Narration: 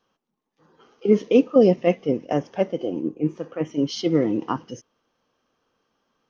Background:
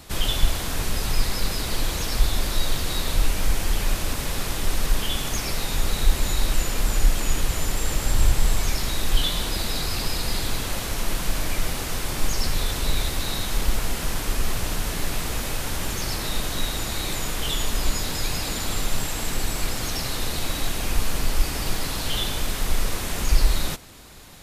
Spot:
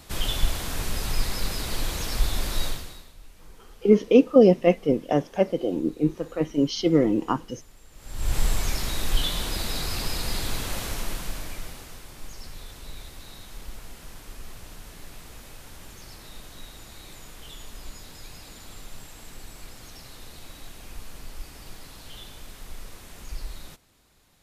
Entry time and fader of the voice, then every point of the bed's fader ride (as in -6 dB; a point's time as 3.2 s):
2.80 s, +0.5 dB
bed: 2.66 s -3.5 dB
3.14 s -27.5 dB
7.91 s -27.5 dB
8.36 s -3 dB
10.87 s -3 dB
12.08 s -17 dB